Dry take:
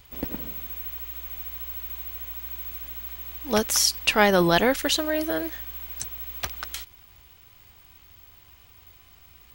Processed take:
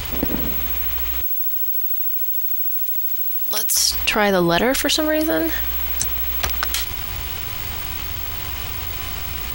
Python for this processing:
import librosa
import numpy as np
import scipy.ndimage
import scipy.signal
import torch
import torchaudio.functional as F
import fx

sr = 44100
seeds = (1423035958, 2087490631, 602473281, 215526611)

y = fx.differentiator(x, sr, at=(1.21, 3.77))
y = fx.env_flatten(y, sr, amount_pct=70)